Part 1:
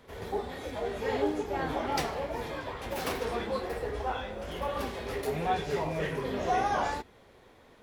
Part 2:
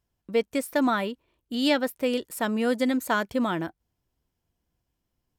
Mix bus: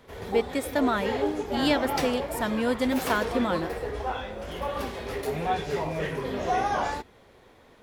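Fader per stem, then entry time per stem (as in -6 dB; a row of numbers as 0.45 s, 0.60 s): +2.0 dB, -1.5 dB; 0.00 s, 0.00 s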